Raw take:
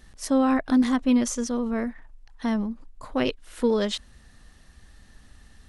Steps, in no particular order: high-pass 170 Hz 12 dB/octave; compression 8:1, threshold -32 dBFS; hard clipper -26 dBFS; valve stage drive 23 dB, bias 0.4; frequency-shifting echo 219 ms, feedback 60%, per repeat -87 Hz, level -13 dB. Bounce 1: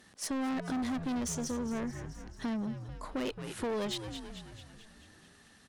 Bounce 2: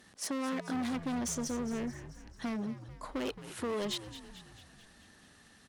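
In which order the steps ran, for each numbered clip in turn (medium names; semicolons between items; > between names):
high-pass > valve stage > frequency-shifting echo > hard clipper > compression; hard clipper > valve stage > compression > high-pass > frequency-shifting echo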